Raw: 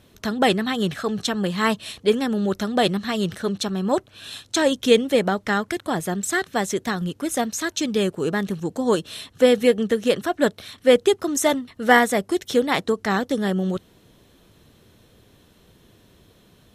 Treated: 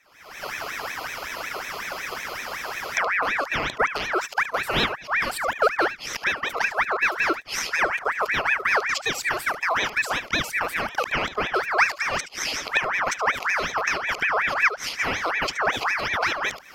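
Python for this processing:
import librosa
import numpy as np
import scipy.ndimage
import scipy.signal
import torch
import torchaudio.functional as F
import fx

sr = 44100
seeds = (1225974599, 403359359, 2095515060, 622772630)

p1 = np.flip(x).copy()
p2 = fx.recorder_agc(p1, sr, target_db=-10.0, rise_db_per_s=67.0, max_gain_db=30)
p3 = scipy.signal.sosfilt(scipy.signal.bessel(2, 200.0, 'highpass', norm='mag', fs=sr, output='sos'), p2)
p4 = fx.peak_eq(p3, sr, hz=430.0, db=9.0, octaves=0.49)
p5 = fx.fixed_phaser(p4, sr, hz=2500.0, stages=6)
p6 = p5 + fx.echo_single(p5, sr, ms=74, db=-13.0, dry=0)
p7 = fx.ring_lfo(p6, sr, carrier_hz=1500.0, swing_pct=45, hz=5.4)
y = p7 * librosa.db_to_amplitude(-2.0)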